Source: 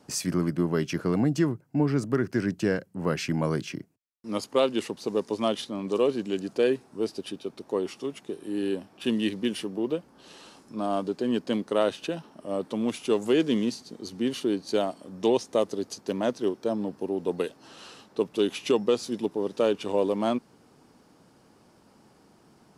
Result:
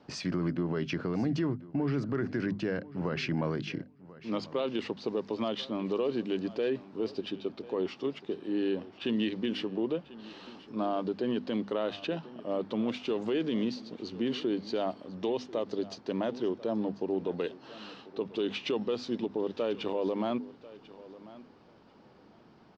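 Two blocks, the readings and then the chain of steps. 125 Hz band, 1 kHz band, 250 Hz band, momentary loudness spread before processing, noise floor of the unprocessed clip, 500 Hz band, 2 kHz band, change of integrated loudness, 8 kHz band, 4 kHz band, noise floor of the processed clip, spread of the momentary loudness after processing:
-4.5 dB, -5.0 dB, -4.0 dB, 9 LU, -59 dBFS, -5.5 dB, -3.5 dB, -5.0 dB, under -10 dB, -4.0 dB, -58 dBFS, 10 LU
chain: LPF 4400 Hz 24 dB/oct; notches 50/100/150/200/250 Hz; limiter -22 dBFS, peak gain reduction 10.5 dB; on a send: feedback echo 1.042 s, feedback 16%, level -18.5 dB

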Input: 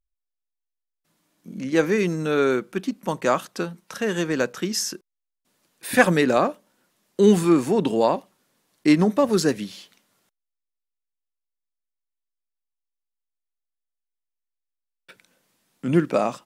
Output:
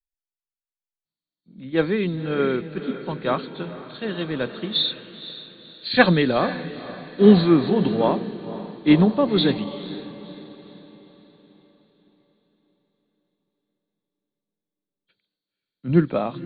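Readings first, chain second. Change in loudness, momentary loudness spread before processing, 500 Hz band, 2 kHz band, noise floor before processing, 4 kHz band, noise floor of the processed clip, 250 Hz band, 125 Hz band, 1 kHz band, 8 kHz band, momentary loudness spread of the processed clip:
+1.0 dB, 14 LU, -0.5 dB, -0.5 dB, -83 dBFS, +6.5 dB, under -85 dBFS, +2.0 dB, +4.0 dB, -1.5 dB, under -40 dB, 19 LU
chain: nonlinear frequency compression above 3100 Hz 4:1; low shelf 140 Hz +12 dB; on a send: diffused feedback echo 0.509 s, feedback 64%, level -9 dB; on the sum: three-band expander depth 70%; gain -4 dB

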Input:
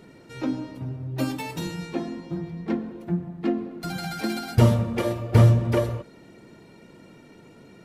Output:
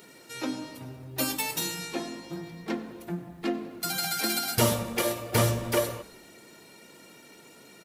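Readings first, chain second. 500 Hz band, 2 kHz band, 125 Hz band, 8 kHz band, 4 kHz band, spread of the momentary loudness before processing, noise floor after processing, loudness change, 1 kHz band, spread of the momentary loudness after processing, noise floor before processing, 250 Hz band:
-2.5 dB, +2.5 dB, -12.0 dB, +12.0 dB, +6.5 dB, 15 LU, -53 dBFS, -4.0 dB, 0.0 dB, 14 LU, -50 dBFS, -6.5 dB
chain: RIAA curve recording; frequency-shifting echo 96 ms, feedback 52%, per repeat -53 Hz, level -20 dB

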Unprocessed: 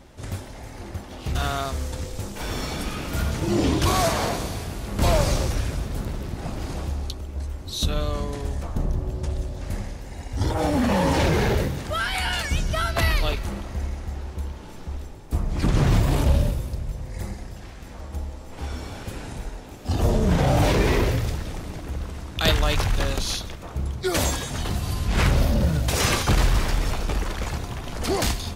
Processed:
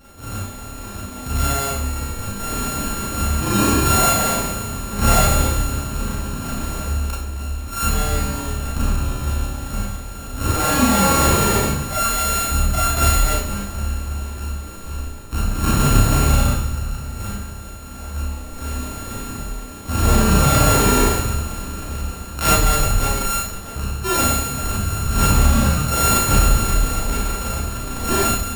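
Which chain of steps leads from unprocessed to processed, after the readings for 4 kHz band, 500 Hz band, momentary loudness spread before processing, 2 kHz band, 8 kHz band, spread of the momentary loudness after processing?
+3.0 dB, +2.0 dB, 14 LU, +4.0 dB, +12.5 dB, 15 LU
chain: sample sorter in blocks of 32 samples; high shelf 7800 Hz +3.5 dB; Schroeder reverb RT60 0.46 s, combs from 28 ms, DRR -6 dB; gain -2 dB

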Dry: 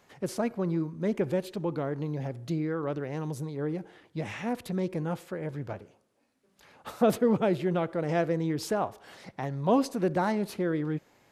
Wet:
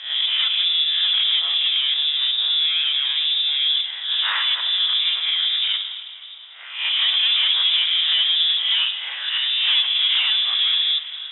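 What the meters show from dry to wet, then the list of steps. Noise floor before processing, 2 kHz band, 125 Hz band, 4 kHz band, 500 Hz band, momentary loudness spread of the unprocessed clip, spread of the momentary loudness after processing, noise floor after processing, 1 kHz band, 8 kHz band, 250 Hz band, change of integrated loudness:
-69 dBFS, +15.0 dB, under -40 dB, +35.5 dB, under -25 dB, 12 LU, 7 LU, -37 dBFS, -3.5 dB, under -35 dB, under -40 dB, +13.0 dB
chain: spectral swells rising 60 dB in 0.49 s; in parallel at -2 dB: negative-ratio compressor -37 dBFS, ratio -1; on the sum: hard clip -25 dBFS, distortion -9 dB; plate-style reverb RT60 2.8 s, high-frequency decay 0.85×, DRR 7.5 dB; added noise violet -42 dBFS; inverted band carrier 3700 Hz; Butterworth band-pass 2300 Hz, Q 0.53; gain +8 dB

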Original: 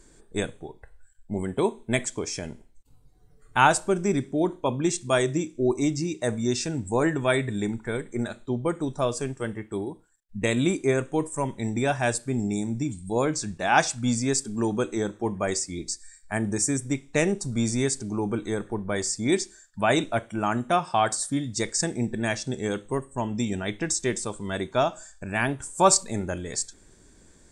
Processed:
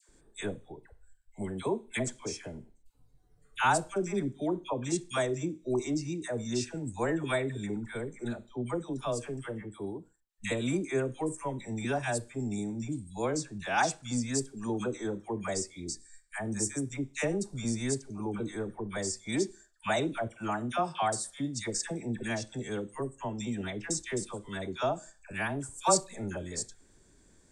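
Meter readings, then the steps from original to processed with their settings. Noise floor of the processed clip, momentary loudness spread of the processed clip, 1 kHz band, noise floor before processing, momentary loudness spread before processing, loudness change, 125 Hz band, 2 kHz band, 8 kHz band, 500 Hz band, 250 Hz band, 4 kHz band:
-63 dBFS, 9 LU, -7.0 dB, -56 dBFS, 9 LU, -7.0 dB, -7.0 dB, -7.0 dB, -7.0 dB, -7.0 dB, -7.0 dB, -7.0 dB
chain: dispersion lows, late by 89 ms, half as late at 980 Hz; gain -7 dB

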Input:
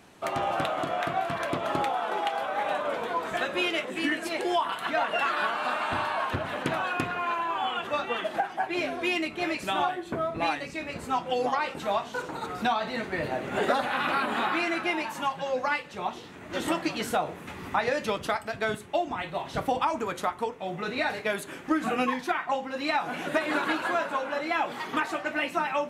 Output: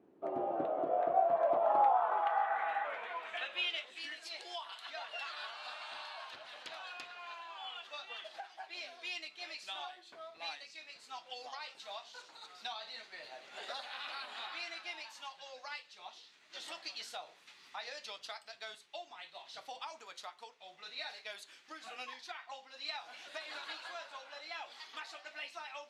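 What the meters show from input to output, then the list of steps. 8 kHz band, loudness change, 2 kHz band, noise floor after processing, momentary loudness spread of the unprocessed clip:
-12.0 dB, -10.5 dB, -14.0 dB, -62 dBFS, 5 LU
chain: dynamic EQ 680 Hz, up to +8 dB, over -41 dBFS, Q 1.3; spectral repair 2.3–2.82, 520–2000 Hz before; band-pass sweep 350 Hz -> 4500 Hz, 0.56–4.06; gain -3 dB

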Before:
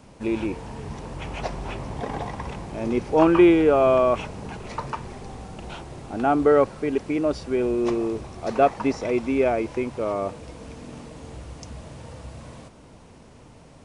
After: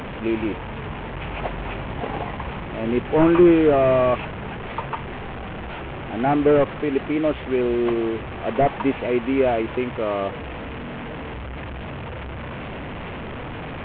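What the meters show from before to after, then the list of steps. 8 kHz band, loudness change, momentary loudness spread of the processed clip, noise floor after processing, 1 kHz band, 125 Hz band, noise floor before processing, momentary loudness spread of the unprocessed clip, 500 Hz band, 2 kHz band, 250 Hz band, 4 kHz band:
n/a, -0.5 dB, 16 LU, -32 dBFS, +0.5 dB, +4.5 dB, -49 dBFS, 22 LU, +1.0 dB, +4.0 dB, +2.0 dB, +3.5 dB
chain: delta modulation 16 kbps, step -28 dBFS; gain +2 dB

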